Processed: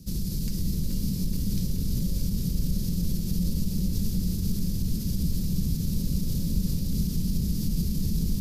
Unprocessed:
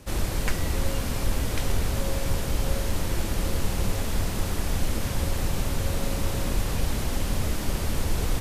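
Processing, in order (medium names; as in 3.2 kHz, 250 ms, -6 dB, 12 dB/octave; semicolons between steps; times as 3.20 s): FFT filter 110 Hz 0 dB, 180 Hz +12 dB, 300 Hz -5 dB, 470 Hz -11 dB, 670 Hz -27 dB, 1.9 kHz -22 dB, 3.1 kHz -12 dB, 4.8 kHz +3 dB, 8.4 kHz -4 dB, 13 kHz +4 dB; peak limiter -20.5 dBFS, peak gain reduction 9 dB; feedback echo behind a low-pass 428 ms, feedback 73%, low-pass 2.9 kHz, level -4.5 dB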